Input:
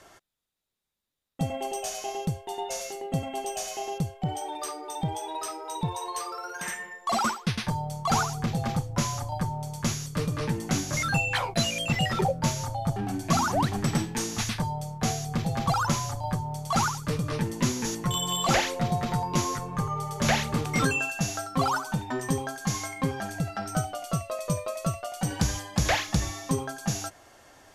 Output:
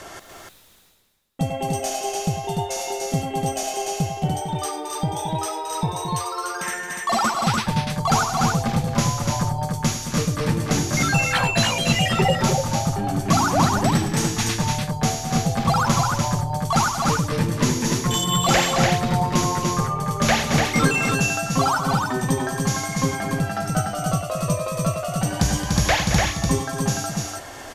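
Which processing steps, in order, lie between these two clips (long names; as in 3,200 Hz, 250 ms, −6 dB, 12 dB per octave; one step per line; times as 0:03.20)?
reversed playback
upward compression, threshold −34 dBFS
reversed playback
multi-tap delay 97/220/294 ms −12.5/−10/−3.5 dB
level +5 dB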